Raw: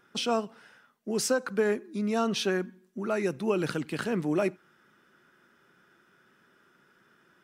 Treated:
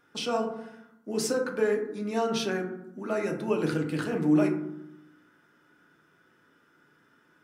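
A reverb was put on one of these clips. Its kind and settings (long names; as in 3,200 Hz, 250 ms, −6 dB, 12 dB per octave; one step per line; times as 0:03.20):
feedback delay network reverb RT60 0.82 s, low-frequency decay 1.5×, high-frequency decay 0.35×, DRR 1 dB
level −3 dB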